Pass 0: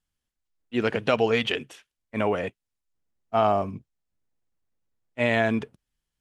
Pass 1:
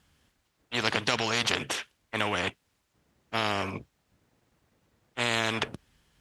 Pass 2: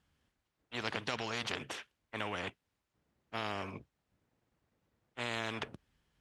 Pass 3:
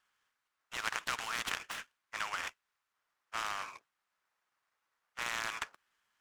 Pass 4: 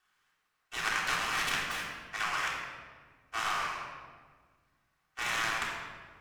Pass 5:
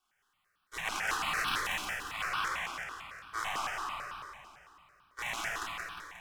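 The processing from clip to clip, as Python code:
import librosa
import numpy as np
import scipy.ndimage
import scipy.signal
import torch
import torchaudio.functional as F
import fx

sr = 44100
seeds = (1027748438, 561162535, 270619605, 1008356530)

y1 = scipy.signal.sosfilt(scipy.signal.butter(2, 59.0, 'highpass', fs=sr, output='sos'), x)
y1 = fx.high_shelf(y1, sr, hz=5700.0, db=-10.5)
y1 = fx.spectral_comp(y1, sr, ratio=4.0)
y2 = fx.high_shelf(y1, sr, hz=4100.0, db=-6.5)
y2 = y2 * librosa.db_to_amplitude(-9.0)
y3 = fx.highpass_res(y2, sr, hz=1200.0, q=1.8)
y3 = fx.noise_mod_delay(y3, sr, seeds[0], noise_hz=3400.0, depth_ms=0.03)
y4 = fx.room_shoebox(y3, sr, seeds[1], volume_m3=1700.0, walls='mixed', distance_m=3.5)
y5 = fx.fade_out_tail(y4, sr, length_s=1.07)
y5 = fx.echo_feedback(y5, sr, ms=178, feedback_pct=60, wet_db=-3.5)
y5 = fx.phaser_held(y5, sr, hz=9.0, low_hz=490.0, high_hz=2000.0)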